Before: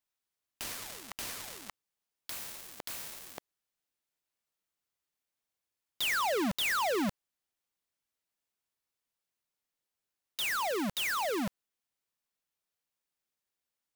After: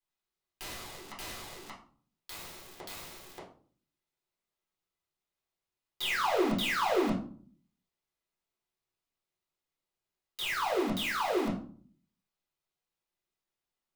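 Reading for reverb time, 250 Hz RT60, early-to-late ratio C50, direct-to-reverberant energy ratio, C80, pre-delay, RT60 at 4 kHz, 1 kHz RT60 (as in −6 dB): 0.45 s, 0.70 s, 7.0 dB, −6.0 dB, 11.5 dB, 6 ms, 0.30 s, 0.45 s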